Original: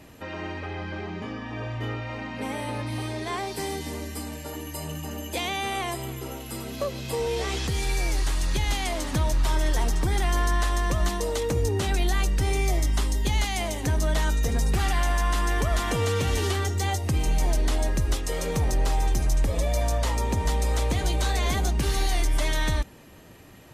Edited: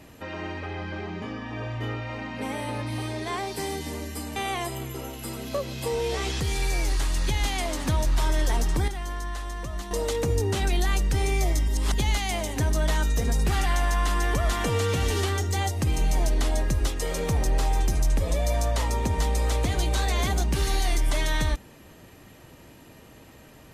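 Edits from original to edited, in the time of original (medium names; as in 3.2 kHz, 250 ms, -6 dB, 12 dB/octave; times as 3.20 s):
4.36–5.63 s: delete
10.15–11.18 s: gain -9 dB
12.95–13.21 s: reverse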